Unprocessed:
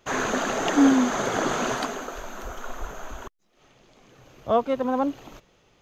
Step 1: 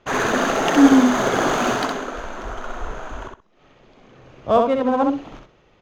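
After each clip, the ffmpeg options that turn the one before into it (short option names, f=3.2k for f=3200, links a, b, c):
-af "aecho=1:1:64|128|192:0.631|0.126|0.0252,adynamicsmooth=sensitivity=6.5:basefreq=3.7k,volume=4.5dB"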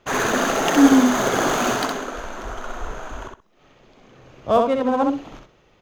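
-af "highshelf=f=7.5k:g=10.5,volume=-1dB"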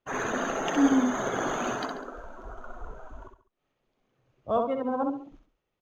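-af "afftdn=nr=16:nf=-30,aecho=1:1:138:0.133,volume=-9dB"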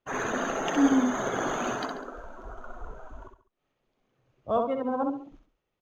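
-af anull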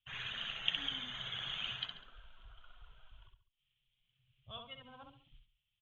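-filter_complex "[0:a]firequalizer=gain_entry='entry(130,0);entry(270,-30);entry(3200,14);entry(5000,-22)':delay=0.05:min_phase=1,acrossover=split=260[a][b];[a]acompressor=threshold=-49dB:ratio=6[c];[c][b]amix=inputs=2:normalize=0,volume=-4dB"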